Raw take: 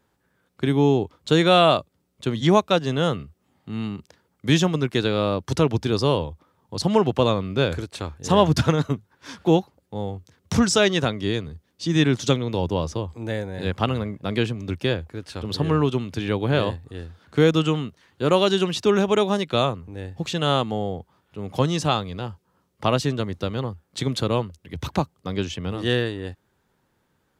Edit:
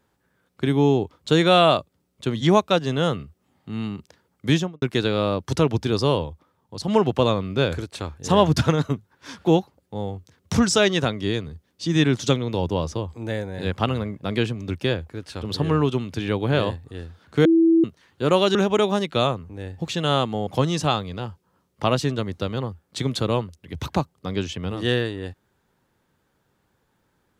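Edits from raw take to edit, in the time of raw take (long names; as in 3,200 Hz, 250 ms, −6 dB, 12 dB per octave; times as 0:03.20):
0:04.47–0:04.82: fade out and dull
0:06.18–0:06.88: fade out, to −6.5 dB
0:17.45–0:17.84: beep over 329 Hz −12.5 dBFS
0:18.55–0:18.93: remove
0:20.85–0:21.48: remove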